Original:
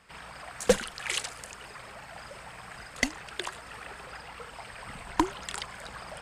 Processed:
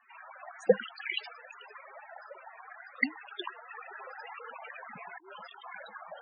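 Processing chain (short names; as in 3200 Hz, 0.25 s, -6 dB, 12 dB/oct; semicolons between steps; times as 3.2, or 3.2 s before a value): three-band isolator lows -23 dB, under 170 Hz, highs -13 dB, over 4500 Hz; 3.69–5.88 negative-ratio compressor -46 dBFS, ratio -1; high shelf 4100 Hz +8.5 dB; loudest bins only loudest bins 16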